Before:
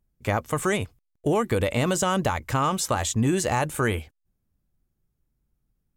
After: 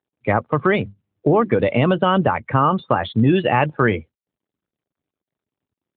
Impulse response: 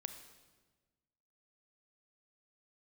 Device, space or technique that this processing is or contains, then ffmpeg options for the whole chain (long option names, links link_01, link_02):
mobile call with aggressive noise cancelling: -filter_complex "[0:a]asettb=1/sr,asplit=3[link_01][link_02][link_03];[link_01]atrim=end=0.584[link_04];[link_02]atrim=start=0.58:end=1.59,asetpts=PTS-STARTPTS,afade=type=in:duration=0.004:curve=qsin,afade=type=out:start_time=1.006:duration=0.004:curve=qsin,bandreject=frequency=100.2:width_type=h:width=4,bandreject=frequency=200.4:width_type=h:width=4,bandreject=frequency=300.6:width_type=h:width=4[link_05];[link_03]atrim=start=1.586[link_06];[link_04][link_05]acrossfade=duration=0.004:curve1=hsin:curve2=qsin[link_07];[link_07][link_06]acrossfade=duration=0.004:curve1=qsin:curve2=hsin,highpass=54,asettb=1/sr,asplit=3[link_08][link_09][link_10];[link_08]atrim=end=3.154[link_11];[link_09]atrim=start=3.15:end=3.65,asetpts=PTS-STARTPTS,afade=type=in:duration=0.004:curve=qsin,afade=type=out:start_time=0.496:duration=0.004:curve=qsin,adynamicequalizer=threshold=0.00447:dfrequency=3400:dqfactor=1.3:tfrequency=3400:tqfactor=1.3:attack=5:release=100:ratio=0.375:range=3:mode=boostabove:tftype=bell[link_12];[link_10]atrim=start=3.646[link_13];[link_11][link_12]acrossfade=duration=0.004:curve1=hsin:curve2=qsin[link_14];[link_14][link_13]acrossfade=duration=0.004:curve1=qsin:curve2=hsin,highpass=frequency=100:width=0.5412,highpass=frequency=100:width=1.3066,afftdn=noise_reduction=26:noise_floor=-33,volume=7.5dB" -ar 8000 -c:a libopencore_amrnb -b:a 12200